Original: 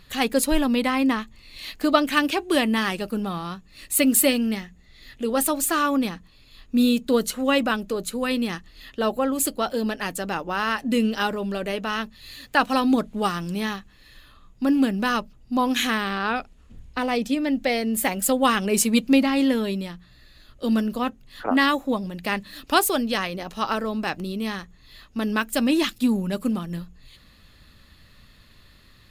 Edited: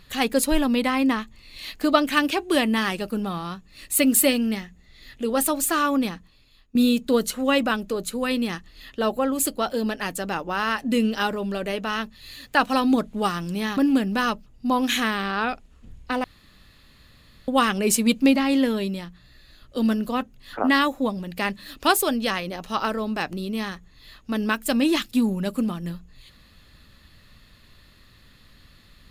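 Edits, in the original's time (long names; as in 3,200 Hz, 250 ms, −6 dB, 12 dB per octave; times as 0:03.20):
0:06.11–0:06.75: fade out, to −18.5 dB
0:13.77–0:14.64: remove
0:17.11–0:18.35: fill with room tone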